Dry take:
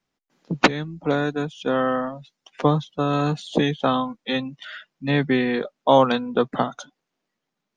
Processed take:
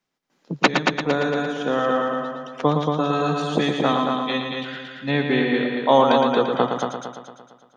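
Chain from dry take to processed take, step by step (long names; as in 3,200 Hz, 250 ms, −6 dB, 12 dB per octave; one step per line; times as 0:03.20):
low-shelf EQ 110 Hz −9.5 dB
echo machine with several playback heads 114 ms, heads first and second, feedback 49%, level −6 dB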